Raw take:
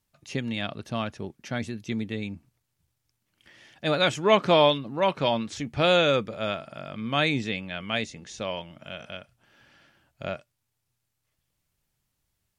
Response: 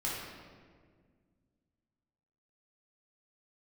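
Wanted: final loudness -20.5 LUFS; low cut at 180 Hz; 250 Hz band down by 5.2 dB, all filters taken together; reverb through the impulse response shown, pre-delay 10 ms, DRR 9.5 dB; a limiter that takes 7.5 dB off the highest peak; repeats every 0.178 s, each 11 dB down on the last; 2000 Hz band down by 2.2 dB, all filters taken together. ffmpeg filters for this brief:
-filter_complex "[0:a]highpass=180,equalizer=f=250:t=o:g=-5,equalizer=f=2k:t=o:g=-3,alimiter=limit=-14.5dB:level=0:latency=1,aecho=1:1:178|356|534:0.282|0.0789|0.0221,asplit=2[a][b];[1:a]atrim=start_sample=2205,adelay=10[c];[b][c]afir=irnorm=-1:irlink=0,volume=-14.5dB[d];[a][d]amix=inputs=2:normalize=0,volume=9.5dB"

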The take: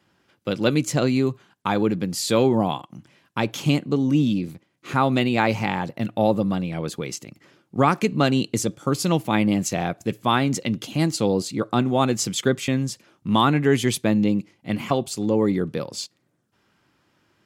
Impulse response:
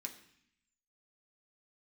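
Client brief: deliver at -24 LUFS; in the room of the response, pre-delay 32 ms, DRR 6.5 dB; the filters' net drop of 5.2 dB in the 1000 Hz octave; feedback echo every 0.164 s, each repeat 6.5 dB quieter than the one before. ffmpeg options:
-filter_complex "[0:a]equalizer=f=1k:t=o:g=-7,aecho=1:1:164|328|492|656|820|984:0.473|0.222|0.105|0.0491|0.0231|0.0109,asplit=2[a][b];[1:a]atrim=start_sample=2205,adelay=32[c];[b][c]afir=irnorm=-1:irlink=0,volume=-3dB[d];[a][d]amix=inputs=2:normalize=0,volume=-2.5dB"

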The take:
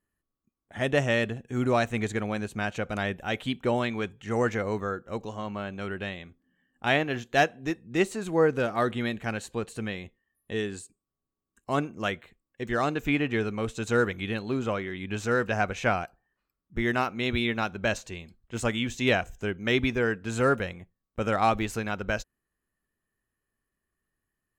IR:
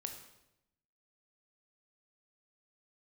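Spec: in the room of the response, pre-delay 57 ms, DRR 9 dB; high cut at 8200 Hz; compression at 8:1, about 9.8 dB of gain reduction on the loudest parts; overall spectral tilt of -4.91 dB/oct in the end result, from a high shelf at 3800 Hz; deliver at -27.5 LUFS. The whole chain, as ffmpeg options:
-filter_complex "[0:a]lowpass=8.2k,highshelf=f=3.8k:g=-5.5,acompressor=threshold=-28dB:ratio=8,asplit=2[a][b];[1:a]atrim=start_sample=2205,adelay=57[c];[b][c]afir=irnorm=-1:irlink=0,volume=-7dB[d];[a][d]amix=inputs=2:normalize=0,volume=6.5dB"

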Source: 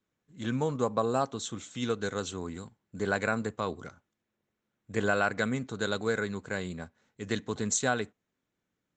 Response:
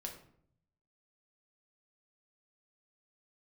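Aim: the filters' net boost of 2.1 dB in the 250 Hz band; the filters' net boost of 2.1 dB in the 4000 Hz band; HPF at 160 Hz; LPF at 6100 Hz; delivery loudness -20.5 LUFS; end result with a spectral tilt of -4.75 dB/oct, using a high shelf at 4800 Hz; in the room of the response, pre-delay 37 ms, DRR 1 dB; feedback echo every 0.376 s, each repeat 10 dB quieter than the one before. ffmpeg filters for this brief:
-filter_complex "[0:a]highpass=160,lowpass=6.1k,equalizer=f=250:t=o:g=3.5,equalizer=f=4k:t=o:g=5,highshelf=f=4.8k:g=-5,aecho=1:1:376|752|1128|1504:0.316|0.101|0.0324|0.0104,asplit=2[a][b];[1:a]atrim=start_sample=2205,adelay=37[c];[b][c]afir=irnorm=-1:irlink=0,volume=1dB[d];[a][d]amix=inputs=2:normalize=0,volume=8dB"

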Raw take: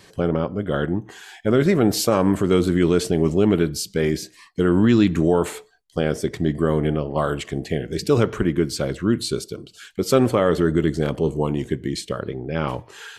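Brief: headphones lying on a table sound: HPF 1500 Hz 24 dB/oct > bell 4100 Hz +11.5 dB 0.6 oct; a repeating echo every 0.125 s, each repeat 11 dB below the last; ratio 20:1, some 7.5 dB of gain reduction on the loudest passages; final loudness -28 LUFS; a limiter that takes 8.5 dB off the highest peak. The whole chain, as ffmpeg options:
-af "acompressor=threshold=-19dB:ratio=20,alimiter=limit=-17.5dB:level=0:latency=1,highpass=f=1.5k:w=0.5412,highpass=f=1.5k:w=1.3066,equalizer=f=4.1k:t=o:w=0.6:g=11.5,aecho=1:1:125|250|375:0.282|0.0789|0.0221,volume=2dB"

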